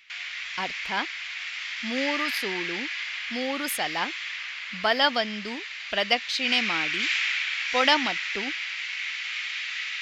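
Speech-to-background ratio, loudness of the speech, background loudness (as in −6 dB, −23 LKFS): 2.0 dB, −27.5 LKFS, −29.5 LKFS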